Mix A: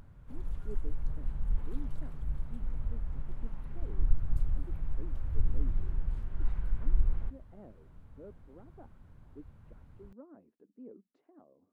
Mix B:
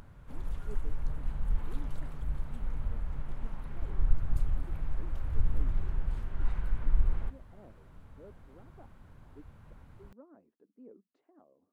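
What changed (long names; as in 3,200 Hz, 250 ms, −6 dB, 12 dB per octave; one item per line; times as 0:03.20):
background +7.0 dB
master: add low-shelf EQ 340 Hz −6.5 dB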